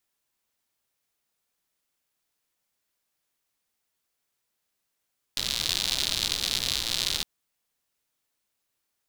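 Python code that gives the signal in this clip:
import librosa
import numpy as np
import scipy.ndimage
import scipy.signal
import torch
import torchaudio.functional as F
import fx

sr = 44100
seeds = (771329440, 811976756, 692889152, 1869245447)

y = fx.rain(sr, seeds[0], length_s=1.86, drops_per_s=120.0, hz=3900.0, bed_db=-10.5)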